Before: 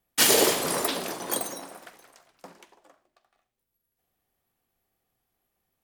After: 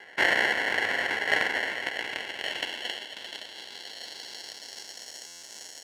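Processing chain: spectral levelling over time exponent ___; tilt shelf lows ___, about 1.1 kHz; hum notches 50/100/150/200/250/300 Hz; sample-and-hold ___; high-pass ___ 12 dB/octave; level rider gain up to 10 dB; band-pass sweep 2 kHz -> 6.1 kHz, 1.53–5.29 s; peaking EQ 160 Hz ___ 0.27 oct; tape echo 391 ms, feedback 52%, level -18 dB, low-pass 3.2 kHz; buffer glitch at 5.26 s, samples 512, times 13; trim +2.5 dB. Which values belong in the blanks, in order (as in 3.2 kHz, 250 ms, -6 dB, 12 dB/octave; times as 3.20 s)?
0.4, -5.5 dB, 36×, 63 Hz, -10 dB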